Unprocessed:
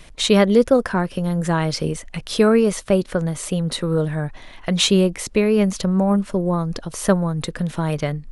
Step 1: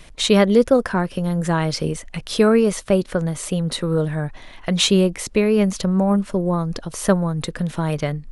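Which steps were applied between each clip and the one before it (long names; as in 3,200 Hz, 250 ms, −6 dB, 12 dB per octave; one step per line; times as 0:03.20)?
no processing that can be heard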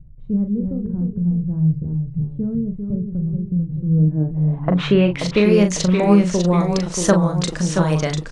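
low-pass filter sweep 130 Hz → 6,700 Hz, 0:03.83–0:05.46
delay with pitch and tempo change per echo 254 ms, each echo −1 semitone, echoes 2, each echo −6 dB
double-tracking delay 39 ms −7 dB
level +1 dB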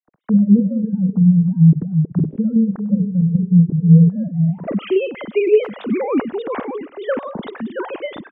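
three sine waves on the formant tracks
far-end echo of a speakerphone 100 ms, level −21 dB
level +2 dB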